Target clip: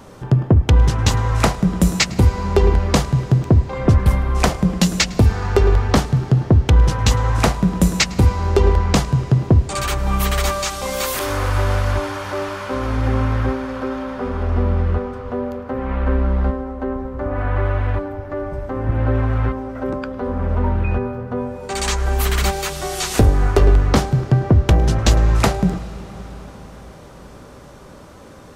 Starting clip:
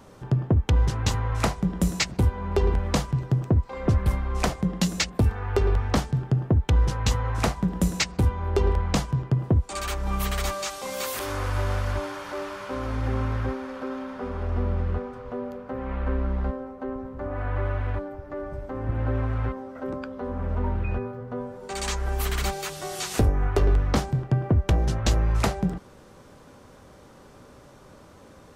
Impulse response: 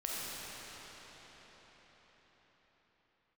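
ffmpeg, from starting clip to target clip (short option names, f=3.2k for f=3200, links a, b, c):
-filter_complex "[0:a]asplit=2[a][b];[1:a]atrim=start_sample=2205,adelay=106[c];[b][c]afir=irnorm=-1:irlink=0,volume=-20dB[d];[a][d]amix=inputs=2:normalize=0,volume=8dB"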